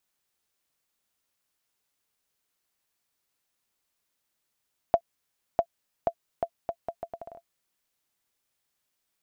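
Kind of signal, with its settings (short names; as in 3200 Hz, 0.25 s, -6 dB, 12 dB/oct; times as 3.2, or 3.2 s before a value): bouncing ball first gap 0.65 s, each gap 0.74, 678 Hz, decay 68 ms -8.5 dBFS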